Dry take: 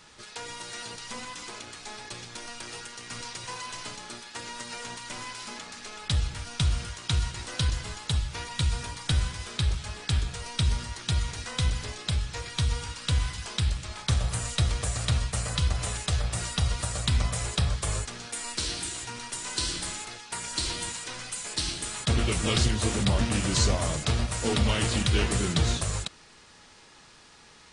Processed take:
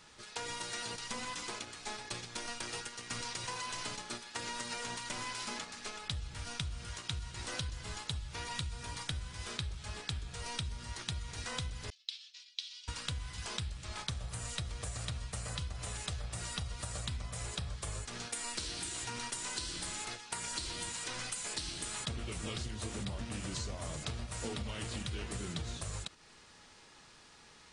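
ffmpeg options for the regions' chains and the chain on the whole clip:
ffmpeg -i in.wav -filter_complex "[0:a]asettb=1/sr,asplit=3[link_01][link_02][link_03];[link_01]atrim=end=11.904[link_04];[link_02]atrim=start=11.9:end=12.88,asetpts=PTS-STARTPTS,afade=type=in:duration=0.004:curve=qsin,afade=type=out:start_time=0.976:duration=0.004:curve=qsin,agate=range=-33dB:threshold=-32dB:ratio=3:release=100:detection=peak,afreqshift=44,asuperpass=centerf=4000:order=4:qfactor=1.5[link_05];[link_03]atrim=start=12.876[link_06];[link_04][link_05]acrossfade=duration=0.004:curve1=hsin:curve2=qsin[link_07];[link_07][link_06]acrossfade=duration=0.004:curve1=qsin:curve2=hsin,agate=range=-7dB:threshold=-40dB:ratio=16:detection=peak,acompressor=threshold=-38dB:ratio=16,volume=2dB" out.wav

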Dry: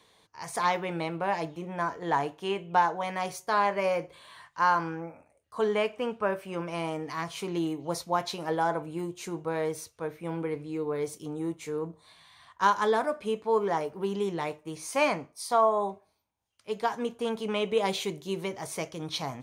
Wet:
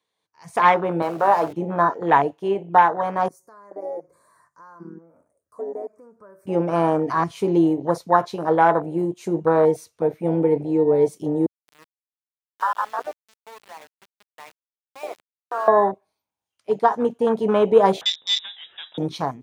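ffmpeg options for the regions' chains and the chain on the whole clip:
ffmpeg -i in.wav -filter_complex "[0:a]asettb=1/sr,asplit=3[link_01][link_02][link_03];[link_01]atrim=end=1.024[link_04];[link_02]atrim=start=1.02:end=1.53,asetpts=PTS-STARTPTS,afade=type=in:duration=0.004:curve=qsin,afade=type=out:start_time=0.506:duration=0.004:curve=qsin,aeval=exprs='val(0)+0.5*0.0178*sgn(val(0))':channel_layout=same,highpass=frequency=620:poles=1[link_05];[link_03]atrim=start=1.526[link_06];[link_04][link_05]acrossfade=duration=0.004:curve1=hsin:curve2=qsin[link_07];[link_07][link_06]acrossfade=duration=0.004:curve1=qsin:curve2=hsin,asettb=1/sr,asplit=3[link_08][link_09][link_10];[link_08]atrim=end=3.284[link_11];[link_09]atrim=start=3.28:end=6.47,asetpts=PTS-STARTPTS,afade=type=in:duration=0.004:curve=qsin,afade=type=out:start_time=3.186:duration=0.004:curve=qsin,equalizer=frequency=800:width_type=o:width=0.21:gain=-15,acompressor=threshold=-48dB:ratio=2.5:attack=3.2:release=140:knee=1:detection=peak,asuperstop=centerf=3000:order=4:qfactor=0.58[link_12];[link_10]atrim=start=6.466[link_13];[link_11][link_12]acrossfade=duration=0.004:curve1=hsin:curve2=qsin[link_14];[link_14][link_13]acrossfade=duration=0.004:curve1=qsin:curve2=hsin,asettb=1/sr,asplit=3[link_15][link_16][link_17];[link_15]atrim=end=11.464[link_18];[link_16]atrim=start=11.46:end=15.68,asetpts=PTS-STARTPTS,afade=type=in:duration=0.004:curve=qsin,afade=type=out:start_time=4.216:duration=0.004:curve=qsin,acompressor=threshold=-31dB:ratio=5:attack=3.2:release=140:knee=1:detection=peak,acrossover=split=590 2900:gain=0.1 1 0.0891[link_19][link_20][link_21];[link_19][link_20][link_21]amix=inputs=3:normalize=0,aeval=exprs='val(0)*gte(abs(val(0)),0.0119)':channel_layout=same[link_22];[link_17]atrim=start=15.676[link_23];[link_18][link_22]acrossfade=duration=0.004:curve1=hsin:curve2=qsin[link_24];[link_24][link_23]acrossfade=duration=0.004:curve1=qsin:curve2=hsin,asettb=1/sr,asplit=3[link_25][link_26][link_27];[link_25]atrim=end=18.014[link_28];[link_26]atrim=start=18.01:end=18.98,asetpts=PTS-STARTPTS,afade=type=in:duration=0.004:curve=qsin,afade=type=out:start_time=0.966:duration=0.004:curve=qsin,highpass=frequency=170:poles=1,aeval=exprs='clip(val(0),-1,0.0266)':channel_layout=same,lowpass=frequency=3300:width_type=q:width=0.5098,lowpass=frequency=3300:width_type=q:width=0.6013,lowpass=frequency=3300:width_type=q:width=0.9,lowpass=frequency=3300:width_type=q:width=2.563,afreqshift=-3900[link_29];[link_27]atrim=start=18.976[link_30];[link_28][link_29]acrossfade=duration=0.004:curve1=hsin:curve2=qsin[link_31];[link_31][link_30]acrossfade=duration=0.004:curve1=qsin:curve2=hsin,afwtdn=0.0224,highpass=frequency=190:poles=1,dynaudnorm=framelen=160:gausssize=5:maxgain=16dB,volume=-1dB" out.wav

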